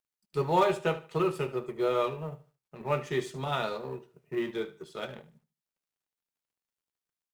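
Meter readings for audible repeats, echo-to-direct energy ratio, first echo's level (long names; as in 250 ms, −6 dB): 2, −15.5 dB, −16.0 dB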